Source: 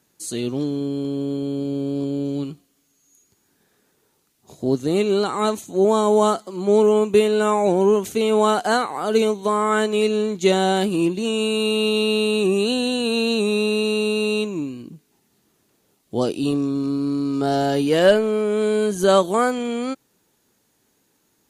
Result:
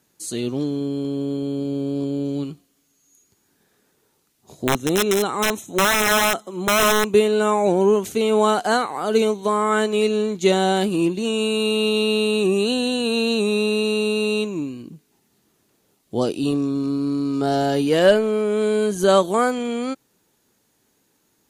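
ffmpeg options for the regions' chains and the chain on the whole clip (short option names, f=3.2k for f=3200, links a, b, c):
-filter_complex "[0:a]asettb=1/sr,asplit=3[a][b][c];[a]atrim=end=4.674[d];[b]atrim=start=4.67:end=7.08,asetpts=PTS-STARTPTS,afade=t=in:d=0.004:c=qsin,afade=t=out:st=2.406:d=0.004:c=qsin,aeval=exprs='(mod(3.76*val(0)+1,2)-1)/3.76':c=same,asuperstop=centerf=4600:order=20:qfactor=5.4[e];[c]atrim=start=7.076[f];[d][e]acrossfade=d=0.004:c1=hsin:c2=qsin[g];[g][f]acrossfade=d=0.004:c1=qsin:c2=hsin"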